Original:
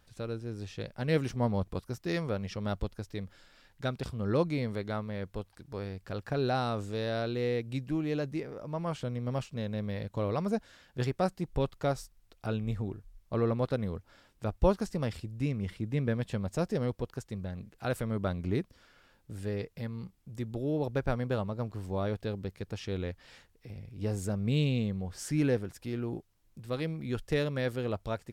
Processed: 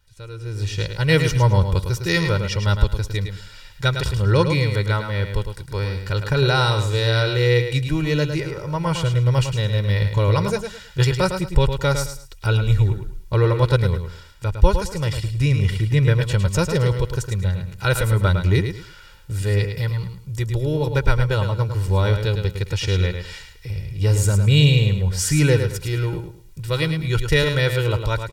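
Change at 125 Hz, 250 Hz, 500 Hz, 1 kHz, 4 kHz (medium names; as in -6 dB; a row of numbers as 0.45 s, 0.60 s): +16.5 dB, +7.5 dB, +9.5 dB, +11.5 dB, +18.5 dB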